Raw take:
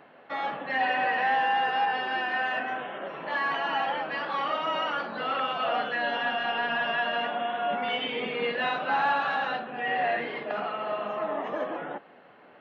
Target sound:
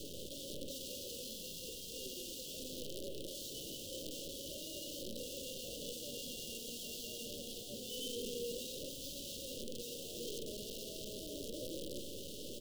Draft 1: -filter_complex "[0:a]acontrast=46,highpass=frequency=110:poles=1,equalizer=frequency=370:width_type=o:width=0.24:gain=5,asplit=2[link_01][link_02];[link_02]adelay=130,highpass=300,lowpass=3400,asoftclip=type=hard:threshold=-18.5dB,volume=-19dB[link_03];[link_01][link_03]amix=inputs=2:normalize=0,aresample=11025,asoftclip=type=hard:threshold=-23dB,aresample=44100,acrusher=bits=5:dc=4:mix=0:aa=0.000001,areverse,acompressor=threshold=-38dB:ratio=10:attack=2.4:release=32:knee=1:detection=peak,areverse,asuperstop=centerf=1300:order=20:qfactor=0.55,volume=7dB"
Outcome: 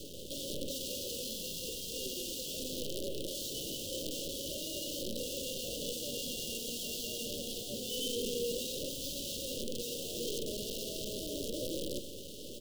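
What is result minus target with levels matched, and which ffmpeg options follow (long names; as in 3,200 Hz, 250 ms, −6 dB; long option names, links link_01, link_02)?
downward compressor: peak gain reduction −6.5 dB
-filter_complex "[0:a]acontrast=46,highpass=frequency=110:poles=1,equalizer=frequency=370:width_type=o:width=0.24:gain=5,asplit=2[link_01][link_02];[link_02]adelay=130,highpass=300,lowpass=3400,asoftclip=type=hard:threshold=-18.5dB,volume=-19dB[link_03];[link_01][link_03]amix=inputs=2:normalize=0,aresample=11025,asoftclip=type=hard:threshold=-23dB,aresample=44100,acrusher=bits=5:dc=4:mix=0:aa=0.000001,areverse,acompressor=threshold=-45dB:ratio=10:attack=2.4:release=32:knee=1:detection=peak,areverse,asuperstop=centerf=1300:order=20:qfactor=0.55,volume=7dB"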